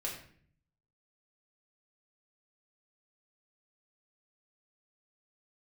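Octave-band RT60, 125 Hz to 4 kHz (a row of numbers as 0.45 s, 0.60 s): 1.0 s, 0.85 s, 0.60 s, 0.50 s, 0.55 s, 0.45 s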